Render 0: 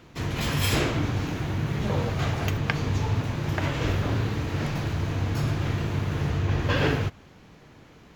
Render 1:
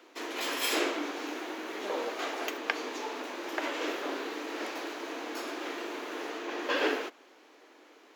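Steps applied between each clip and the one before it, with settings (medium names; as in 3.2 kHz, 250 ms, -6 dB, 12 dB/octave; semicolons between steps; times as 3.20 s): steep high-pass 290 Hz 48 dB/octave; trim -2.5 dB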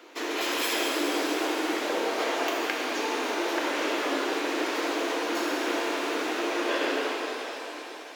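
compression, threshold -34 dBFS, peak gain reduction 10.5 dB; pitch-shifted reverb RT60 3.6 s, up +7 st, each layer -8 dB, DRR -2 dB; trim +5.5 dB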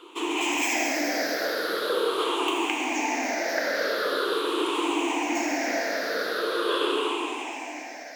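drifting ripple filter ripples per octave 0.65, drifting -0.43 Hz, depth 17 dB; trim -1.5 dB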